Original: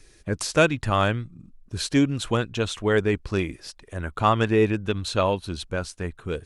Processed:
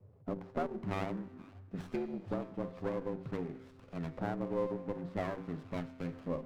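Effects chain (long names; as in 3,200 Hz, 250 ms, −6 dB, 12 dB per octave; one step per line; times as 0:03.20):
treble cut that deepens with the level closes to 1,200 Hz, closed at −18.5 dBFS
low-shelf EQ 410 Hz +7.5 dB
mains-hum notches 50/100/150/200/250/300/350/400/450 Hz
downward compressor 4 to 1, threshold −22 dBFS, peak gain reduction 10 dB
auto-filter low-pass saw up 0.48 Hz 570–2,600 Hz
frequency shifter +81 Hz
tuned comb filter 130 Hz, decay 1.4 s, mix 70%
delay with a high-pass on its return 476 ms, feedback 69%, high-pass 1,900 Hz, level −12.5 dB
on a send at −23.5 dB: convolution reverb RT60 1.7 s, pre-delay 3 ms
on the sum: windowed peak hold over 17 samples
level −3 dB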